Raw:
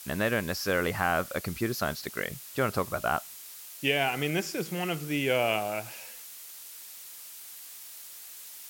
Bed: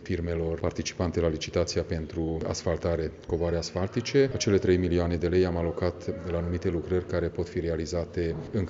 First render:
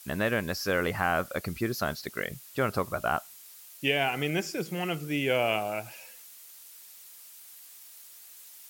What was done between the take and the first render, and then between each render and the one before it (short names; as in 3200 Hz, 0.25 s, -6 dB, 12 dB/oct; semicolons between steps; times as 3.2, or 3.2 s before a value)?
denoiser 6 dB, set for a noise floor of -46 dBFS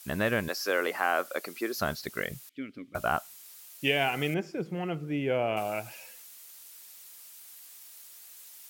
0.48–1.76 HPF 300 Hz 24 dB/oct; 2.49–2.95 vowel filter i; 4.34–5.57 LPF 1000 Hz 6 dB/oct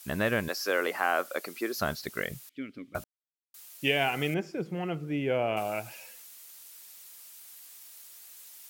3.04–3.54 mute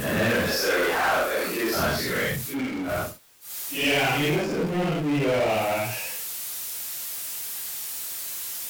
phase scrambler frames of 0.2 s; power-law curve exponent 0.5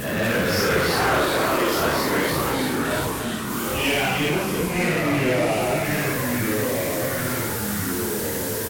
echo 0.317 s -8.5 dB; echoes that change speed 0.235 s, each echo -3 st, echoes 3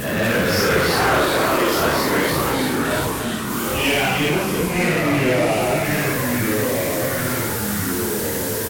gain +3 dB